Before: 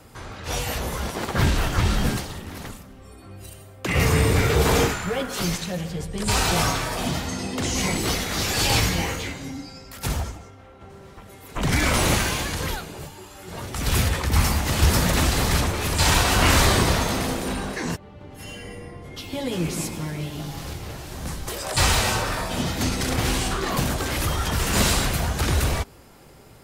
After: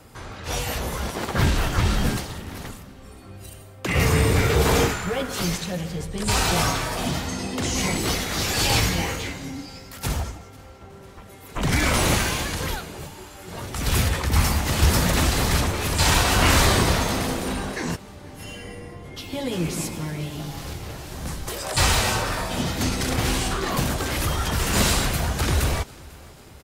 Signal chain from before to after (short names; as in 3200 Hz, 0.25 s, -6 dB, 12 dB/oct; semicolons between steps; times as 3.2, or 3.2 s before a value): feedback echo 0.496 s, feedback 55%, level -23.5 dB